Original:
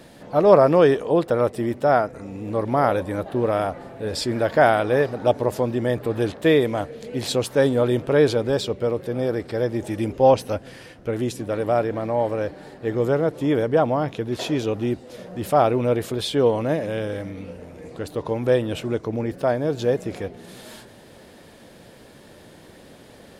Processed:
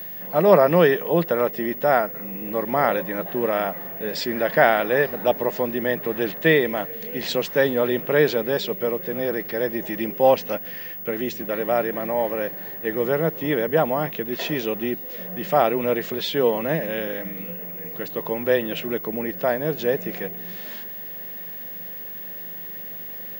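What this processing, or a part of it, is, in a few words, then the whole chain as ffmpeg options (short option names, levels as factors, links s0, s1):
old television with a line whistle: -af "highpass=f=170:w=0.5412,highpass=f=170:w=1.3066,equalizer=f=170:t=q:w=4:g=9,equalizer=f=280:t=q:w=4:g=-5,equalizer=f=1900:t=q:w=4:g=10,equalizer=f=2800:t=q:w=4:g=5,lowpass=f=6700:w=0.5412,lowpass=f=6700:w=1.3066,aeval=exprs='val(0)+0.0282*sin(2*PI*15625*n/s)':c=same,volume=0.891"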